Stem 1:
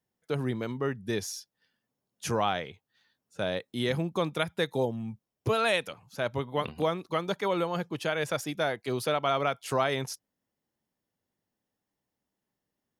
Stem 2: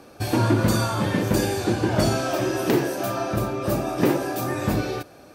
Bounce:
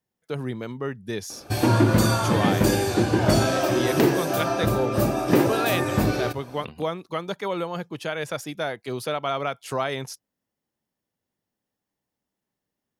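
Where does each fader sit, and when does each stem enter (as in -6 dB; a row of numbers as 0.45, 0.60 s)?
+0.5, +1.5 dB; 0.00, 1.30 s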